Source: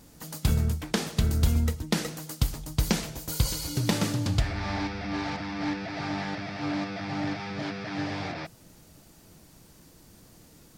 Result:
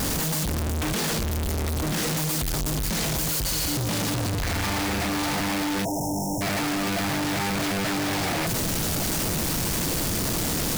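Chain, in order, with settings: infinite clipping; spectral delete 5.85–6.41, 980–5200 Hz; gain +4 dB

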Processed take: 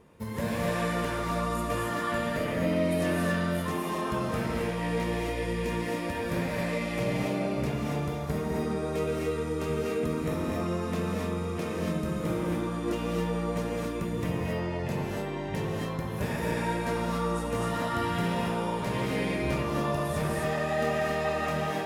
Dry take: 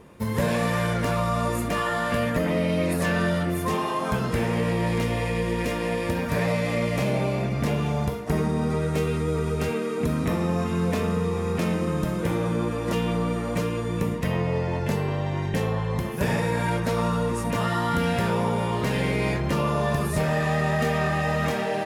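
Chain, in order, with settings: non-linear reverb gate 0.3 s rising, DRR -2 dB; gain -8.5 dB

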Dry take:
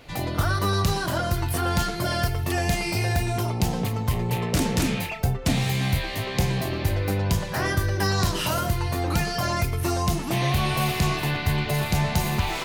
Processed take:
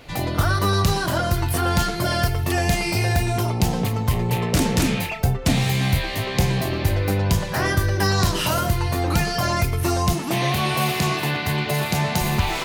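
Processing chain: 10.13–12.21 HPF 140 Hz 12 dB/oct; gain +3.5 dB

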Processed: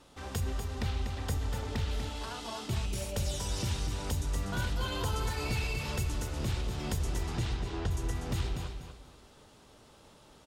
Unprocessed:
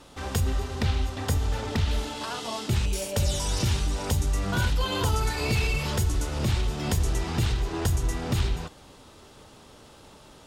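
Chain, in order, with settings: 7.29–7.9 LPF 10000 Hz -> 4000 Hz 12 dB/oct; on a send: feedback echo 0.243 s, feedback 28%, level -7 dB; on the sum: gain -8 dB

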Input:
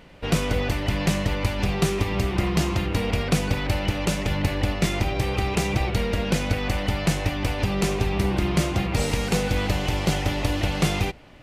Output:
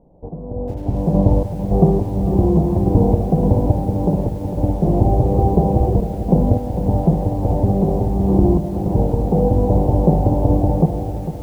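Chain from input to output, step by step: on a send: flutter echo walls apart 9.8 m, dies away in 0.47 s; on the sum: random-step tremolo, depth 80%; AGC gain up to 11 dB; steep low-pass 850 Hz 48 dB/oct; lo-fi delay 0.451 s, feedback 55%, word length 7-bit, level -10.5 dB; gain +2 dB

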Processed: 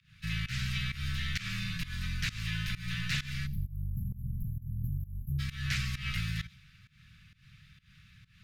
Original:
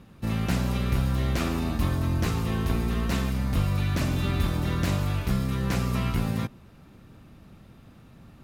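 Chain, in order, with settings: HPF 51 Hz 24 dB/oct; spectral delete 3.47–5.39, 410–11000 Hz; inverse Chebyshev band-stop 400–850 Hz, stop band 60 dB; three-band isolator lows -16 dB, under 210 Hz, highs -14 dB, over 6000 Hz; frequency shift -55 Hz; on a send: thin delay 90 ms, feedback 31%, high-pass 3000 Hz, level -18 dB; on the sum: pump 131 bpm, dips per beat 1, -20 dB, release 0.201 s; in parallel at -11 dB: sine folder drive 4 dB, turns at -22 dBFS

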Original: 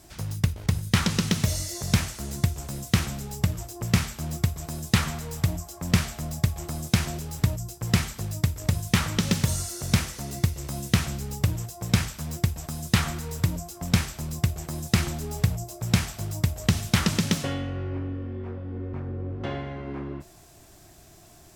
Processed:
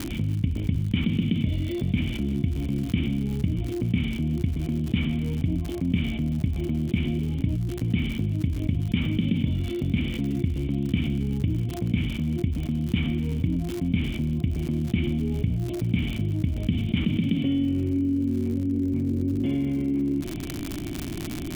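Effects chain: vocal tract filter i; crackle 120/s -52 dBFS; fast leveller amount 70%; gain +4.5 dB

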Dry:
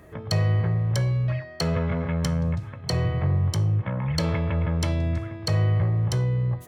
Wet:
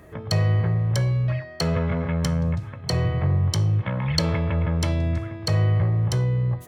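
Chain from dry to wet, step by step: 3.5–4.17 bell 4400 Hz +4.5 dB -> +13 dB 1.7 oct; gain +1.5 dB

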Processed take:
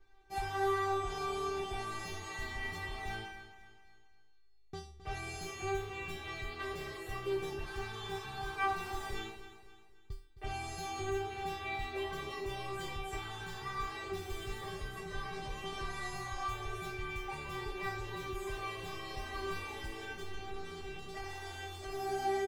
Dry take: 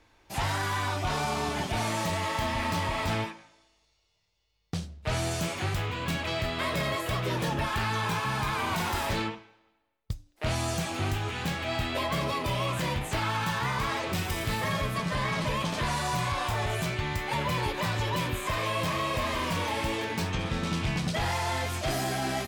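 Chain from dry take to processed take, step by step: tilt -2 dB/oct; in parallel at -2.5 dB: compressor, threshold -33 dBFS, peak gain reduction 13.5 dB; 20.13–22.09 on the sum: overloaded stage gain 26.5 dB; resonator 390 Hz, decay 0.42 s, harmonics all, mix 100%; feedback echo 0.264 s, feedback 44%, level -13.5 dB; gain +7 dB

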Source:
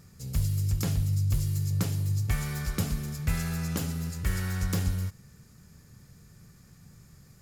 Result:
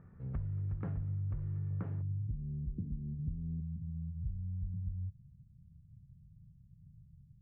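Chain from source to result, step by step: compressor, threshold -31 dBFS, peak gain reduction 10 dB; inverse Chebyshev low-pass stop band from 5300 Hz, stop band 60 dB, from 2.01 s stop band from 1000 Hz, from 3.6 s stop band from 540 Hz; gain -3 dB

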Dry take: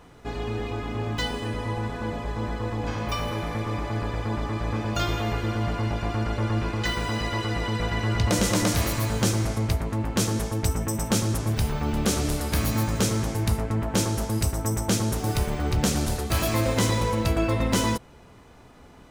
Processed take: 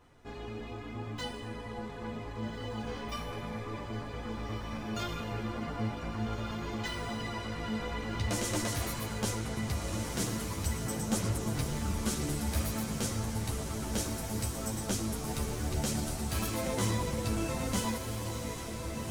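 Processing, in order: diffused feedback echo 1.582 s, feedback 60%, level -5 dB; chorus voices 6, 0.74 Hz, delay 11 ms, depth 3.4 ms; dynamic EQ 9800 Hz, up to +4 dB, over -47 dBFS, Q 0.94; gain -7.5 dB

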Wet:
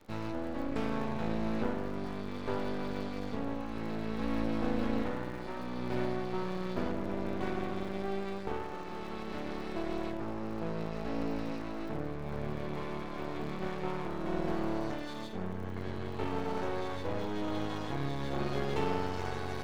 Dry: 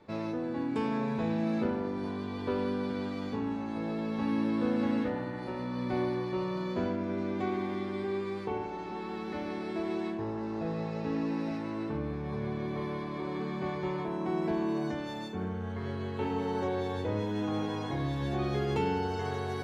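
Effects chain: crackle 100/s -47 dBFS; half-wave rectifier; gain +1.5 dB

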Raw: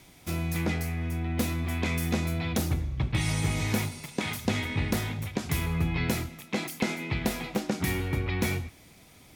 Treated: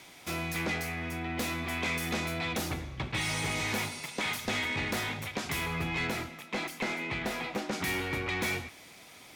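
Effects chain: overdrive pedal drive 21 dB, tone 5000 Hz, clips at -13.5 dBFS, from 6.07 s tone 2300 Hz, from 7.73 s tone 5800 Hz; gain -8.5 dB

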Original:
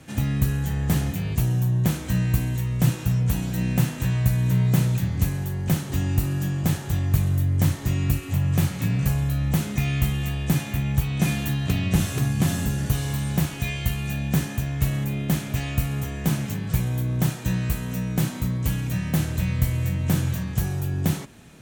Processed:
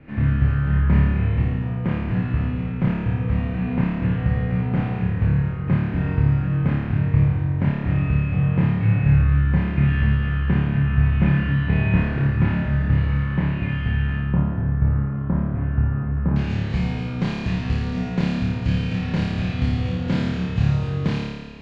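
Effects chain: minimum comb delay 0.42 ms; LPF 2300 Hz 24 dB/oct, from 14.17 s 1300 Hz, from 16.36 s 4200 Hz; flutter echo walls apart 4.8 m, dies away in 1.3 s

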